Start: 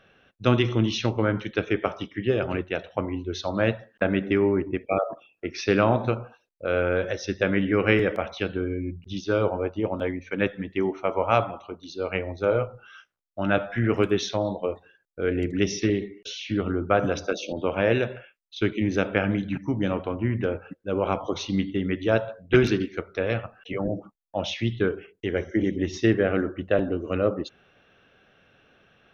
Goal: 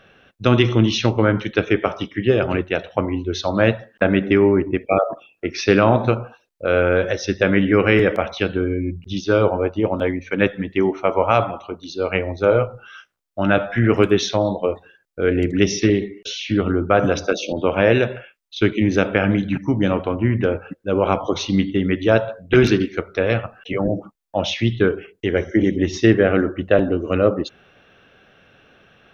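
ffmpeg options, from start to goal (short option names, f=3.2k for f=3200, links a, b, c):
-af "alimiter=level_in=8dB:limit=-1dB:release=50:level=0:latency=1,volume=-1dB"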